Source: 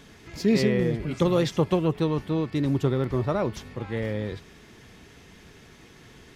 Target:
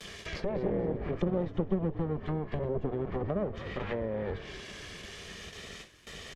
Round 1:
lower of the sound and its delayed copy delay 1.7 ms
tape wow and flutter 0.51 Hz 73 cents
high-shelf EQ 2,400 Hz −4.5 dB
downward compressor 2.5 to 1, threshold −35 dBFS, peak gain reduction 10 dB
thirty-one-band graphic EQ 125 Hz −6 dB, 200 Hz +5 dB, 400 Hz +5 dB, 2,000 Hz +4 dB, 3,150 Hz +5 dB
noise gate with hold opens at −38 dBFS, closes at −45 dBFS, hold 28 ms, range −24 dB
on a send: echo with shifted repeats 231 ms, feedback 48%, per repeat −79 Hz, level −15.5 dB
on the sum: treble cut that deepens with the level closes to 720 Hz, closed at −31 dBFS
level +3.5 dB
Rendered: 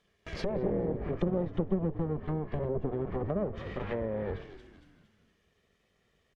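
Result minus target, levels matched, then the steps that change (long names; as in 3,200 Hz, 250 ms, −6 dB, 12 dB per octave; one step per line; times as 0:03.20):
4,000 Hz band −9.5 dB
change: high-shelf EQ 2,400 Hz +7 dB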